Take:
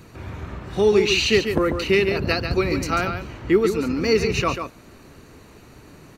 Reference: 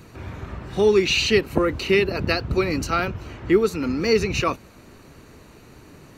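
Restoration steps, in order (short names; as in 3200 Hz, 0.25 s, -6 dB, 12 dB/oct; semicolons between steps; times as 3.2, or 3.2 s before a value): clip repair -8 dBFS; inverse comb 0.142 s -7.5 dB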